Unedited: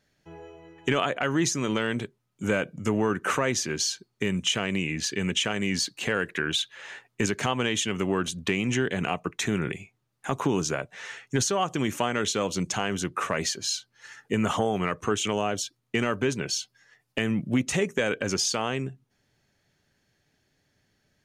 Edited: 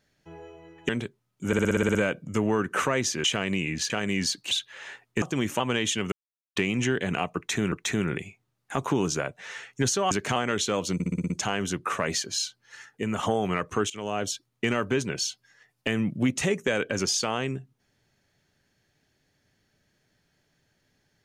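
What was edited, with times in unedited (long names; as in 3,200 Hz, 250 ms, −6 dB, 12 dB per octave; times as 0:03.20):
0:00.89–0:01.88: remove
0:02.46: stutter 0.06 s, 9 plays
0:03.75–0:04.46: remove
0:05.12–0:05.43: remove
0:06.04–0:06.54: remove
0:07.25–0:07.50: swap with 0:11.65–0:12.03
0:08.02–0:08.46: silence
0:09.26–0:09.62: repeat, 2 plays
0:12.61: stutter 0.06 s, 7 plays
0:14.17–0:14.54: clip gain −4 dB
0:15.21–0:15.54: fade in, from −19.5 dB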